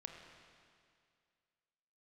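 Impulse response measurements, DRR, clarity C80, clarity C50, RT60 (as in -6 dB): 2.5 dB, 4.5 dB, 3.5 dB, 2.2 s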